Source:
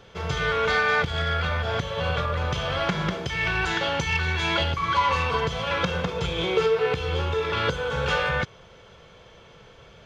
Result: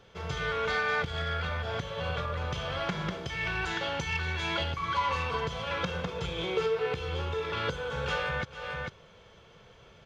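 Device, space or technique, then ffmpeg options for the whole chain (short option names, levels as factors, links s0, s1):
ducked delay: -filter_complex "[0:a]asplit=3[s0][s1][s2];[s1]adelay=446,volume=0.631[s3];[s2]apad=whole_len=463311[s4];[s3][s4]sidechaincompress=threshold=0.00794:ratio=8:attack=11:release=184[s5];[s0][s5]amix=inputs=2:normalize=0,volume=0.447"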